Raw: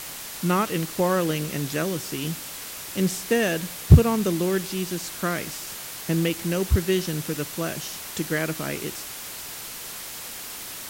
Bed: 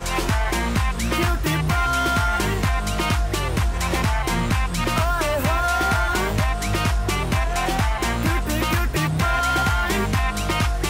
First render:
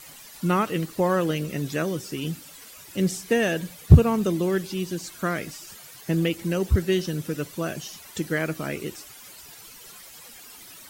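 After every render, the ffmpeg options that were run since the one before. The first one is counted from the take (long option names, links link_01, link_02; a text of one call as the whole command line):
ffmpeg -i in.wav -af "afftdn=noise_reduction=13:noise_floor=-37" out.wav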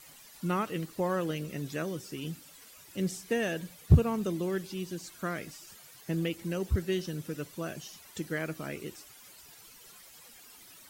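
ffmpeg -i in.wav -af "volume=-8dB" out.wav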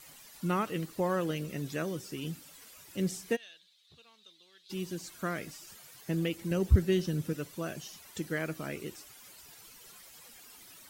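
ffmpeg -i in.wav -filter_complex "[0:a]asplit=3[link_01][link_02][link_03];[link_01]afade=type=out:start_time=3.35:duration=0.02[link_04];[link_02]bandpass=frequency=3800:width_type=q:width=6.4,afade=type=in:start_time=3.35:duration=0.02,afade=type=out:start_time=4.69:duration=0.02[link_05];[link_03]afade=type=in:start_time=4.69:duration=0.02[link_06];[link_04][link_05][link_06]amix=inputs=3:normalize=0,asettb=1/sr,asplit=3[link_07][link_08][link_09];[link_07]atrim=end=6.514[link_10];[link_08]atrim=start=6.51:end=7.33,asetpts=PTS-STARTPTS,afade=type=in:duration=0.004:curve=qsin,afade=type=out:start_time=0.816:duration=0.004:curve=qsin,lowshelf=frequency=300:gain=7[link_11];[link_09]atrim=start=7.326[link_12];[link_10][link_11]acrossfade=duration=0.004:curve1=hsin:curve2=qsin[link_13];[link_13][link_12]acrossfade=duration=0.004:curve1=qsin:curve2=hsin" out.wav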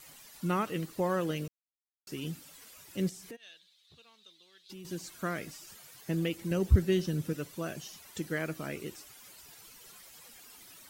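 ffmpeg -i in.wav -filter_complex "[0:a]asettb=1/sr,asplit=3[link_01][link_02][link_03];[link_01]atrim=end=3.094[link_04];[link_02]atrim=start=3.09:end=4.85,asetpts=PTS-STARTPTS,afade=type=in:duration=0.004:curve=qsin,afade=type=out:start_time=1.756:duration=0.004:curve=qsin,acompressor=threshold=-45dB:ratio=4:attack=3.2:release=140:knee=1:detection=peak[link_05];[link_03]atrim=start=4.846[link_06];[link_04][link_05]acrossfade=duration=0.004:curve1=hsin:curve2=qsin[link_07];[link_07][link_06]acrossfade=duration=0.004:curve1=qsin:curve2=hsin,asplit=3[link_08][link_09][link_10];[link_08]atrim=end=1.48,asetpts=PTS-STARTPTS,afade=type=out:start_time=1.476:duration=0.004:curve=hsin[link_11];[link_09]atrim=start=1.48:end=2.07,asetpts=PTS-STARTPTS,volume=0[link_12];[link_10]atrim=start=2.07,asetpts=PTS-STARTPTS,afade=type=in:duration=0.004:curve=hsin[link_13];[link_11][link_12][link_13]concat=n=3:v=0:a=1" out.wav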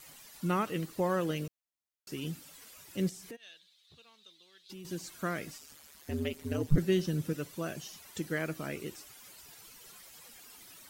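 ffmpeg -i in.wav -filter_complex "[0:a]asettb=1/sr,asplit=3[link_01][link_02][link_03];[link_01]atrim=end=5.584[link_04];[link_02]atrim=start=5.58:end=6.78,asetpts=PTS-STARTPTS,afade=type=in:duration=0.004:curve=qsin,afade=type=out:start_time=1.196:duration=0.004:curve=qsin,aeval=exprs='val(0)*sin(2*PI*75*n/s)':channel_layout=same[link_05];[link_03]atrim=start=6.776[link_06];[link_04][link_05]acrossfade=duration=0.004:curve1=hsin:curve2=qsin[link_07];[link_07][link_06]acrossfade=duration=0.004:curve1=qsin:curve2=hsin" out.wav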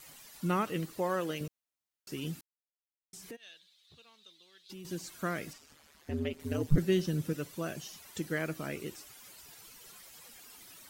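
ffmpeg -i in.wav -filter_complex "[0:a]asettb=1/sr,asplit=3[link_01][link_02][link_03];[link_01]atrim=end=0.984[link_04];[link_02]atrim=start=0.98:end=1.41,asetpts=PTS-STARTPTS,afade=type=in:duration=0.004:curve=qsin,afade=type=out:start_time=0.426:duration=0.004:curve=qsin,highpass=frequency=320:poles=1[link_05];[link_03]atrim=start=1.406[link_06];[link_04][link_05]acrossfade=duration=0.004:curve1=hsin:curve2=qsin[link_07];[link_07][link_06]acrossfade=duration=0.004:curve1=qsin:curve2=hsin,asettb=1/sr,asplit=3[link_08][link_09][link_10];[link_08]atrim=end=5.534[link_11];[link_09]atrim=start=5.53:end=6.4,asetpts=PTS-STARTPTS,afade=type=in:duration=0.004:curve=qsin,afade=type=out:start_time=0.866:duration=0.004:curve=qsin,lowpass=frequency=3000:poles=1[link_12];[link_10]atrim=start=6.396[link_13];[link_11][link_12]acrossfade=duration=0.004:curve1=hsin:curve2=qsin[link_14];[link_14][link_13]acrossfade=duration=0.004:curve1=qsin:curve2=hsin,asplit=3[link_15][link_16][link_17];[link_15]atrim=end=2.41,asetpts=PTS-STARTPTS,afade=type=out:start_time=2.406:duration=0.004:curve=hsin[link_18];[link_16]atrim=start=2.41:end=3.13,asetpts=PTS-STARTPTS,volume=0[link_19];[link_17]atrim=start=3.13,asetpts=PTS-STARTPTS,afade=type=in:duration=0.004:curve=hsin[link_20];[link_18][link_19][link_20]concat=n=3:v=0:a=1" out.wav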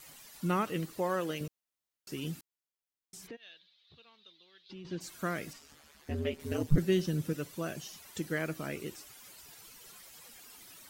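ffmpeg -i in.wav -filter_complex "[0:a]asplit=3[link_01][link_02][link_03];[link_01]afade=type=out:start_time=3.26:duration=0.02[link_04];[link_02]lowpass=frequency=4500:width=0.5412,lowpass=frequency=4500:width=1.3066,afade=type=in:start_time=3.26:duration=0.02,afade=type=out:start_time=5:duration=0.02[link_05];[link_03]afade=type=in:start_time=5:duration=0.02[link_06];[link_04][link_05][link_06]amix=inputs=3:normalize=0,asettb=1/sr,asplit=3[link_07][link_08][link_09];[link_07]atrim=end=5.534[link_10];[link_08]atrim=start=5.53:end=6.63,asetpts=PTS-STARTPTS,afade=type=in:duration=0.004:curve=qsin,afade=type=out:start_time=1.096:duration=0.004:curve=qsin,asplit=2[link_11][link_12];[link_12]adelay=14,volume=-3dB[link_13];[link_11][link_13]amix=inputs=2:normalize=0,atrim=end_sample=48510[link_14];[link_09]atrim=start=6.626[link_15];[link_10][link_14]acrossfade=duration=0.004:curve1=hsin:curve2=qsin[link_16];[link_16][link_15]acrossfade=duration=0.004:curve1=qsin:curve2=hsin" out.wav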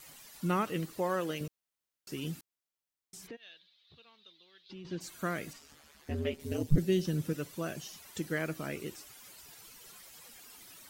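ffmpeg -i in.wav -filter_complex "[0:a]asettb=1/sr,asplit=3[link_01][link_02][link_03];[link_01]atrim=end=5.084[link_04];[link_02]atrim=start=5.08:end=5.56,asetpts=PTS-STARTPTS,afade=type=in:duration=0.004:curve=qsin,afade=type=out:start_time=0.476:duration=0.004:curve=qsin,bandreject=frequency=5300:width=12[link_05];[link_03]atrim=start=5.556[link_06];[link_04][link_05]acrossfade=duration=0.004:curve1=hsin:curve2=qsin[link_07];[link_07][link_06]acrossfade=duration=0.004:curve1=qsin:curve2=hsin,asettb=1/sr,asplit=3[link_08][link_09][link_10];[link_08]atrim=end=6.364[link_11];[link_09]atrim=start=6.36:end=7.05,asetpts=PTS-STARTPTS,afade=type=in:duration=0.004:curve=qsin,afade=type=out:start_time=0.686:duration=0.004:curve=qsin,equalizer=frequency=1300:width=1:gain=-8[link_12];[link_10]atrim=start=7.046[link_13];[link_11][link_12]acrossfade=duration=0.004:curve1=hsin:curve2=qsin[link_14];[link_14][link_13]acrossfade=duration=0.004:curve1=qsin:curve2=hsin" out.wav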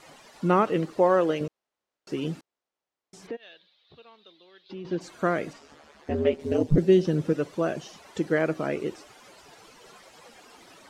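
ffmpeg -i in.wav -af "lowpass=6800,equalizer=frequency=560:width=0.39:gain=13" out.wav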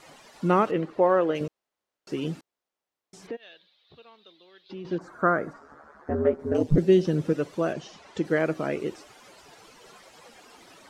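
ffmpeg -i in.wav -filter_complex "[0:a]asettb=1/sr,asplit=3[link_01][link_02][link_03];[link_01]atrim=end=0.714[link_04];[link_02]atrim=start=0.71:end=1.35,asetpts=PTS-STARTPTS,afade=type=in:duration=0.004:curve=qsin,afade=type=out:start_time=0.636:duration=0.004:curve=qsin,bass=frequency=250:gain=-3,treble=frequency=4000:gain=-14[link_05];[link_03]atrim=start=1.346[link_06];[link_04][link_05]acrossfade=duration=0.004:curve1=hsin:curve2=qsin[link_07];[link_07][link_06]acrossfade=duration=0.004:curve1=qsin:curve2=hsin,asettb=1/sr,asplit=3[link_08][link_09][link_10];[link_08]atrim=end=4.984[link_11];[link_09]atrim=start=4.98:end=6.55,asetpts=PTS-STARTPTS,afade=type=in:duration=0.004:curve=qsin,afade=type=out:start_time=1.566:duration=0.004:curve=qsin,highshelf=frequency=2000:width_type=q:width=3:gain=-12[link_12];[link_10]atrim=start=6.546[link_13];[link_11][link_12]acrossfade=duration=0.004:curve1=hsin:curve2=qsin[link_14];[link_14][link_13]acrossfade=duration=0.004:curve1=qsin:curve2=hsin,asettb=1/sr,asplit=3[link_15][link_16][link_17];[link_15]atrim=end=7.734[link_18];[link_16]atrim=start=7.73:end=8.25,asetpts=PTS-STARTPTS,afade=type=in:duration=0.004:curve=qsin,afade=type=out:start_time=0.516:duration=0.004:curve=qsin,lowpass=6400[link_19];[link_17]atrim=start=8.246[link_20];[link_18][link_19]acrossfade=duration=0.004:curve1=hsin:curve2=qsin[link_21];[link_21][link_20]acrossfade=duration=0.004:curve1=qsin:curve2=hsin" out.wav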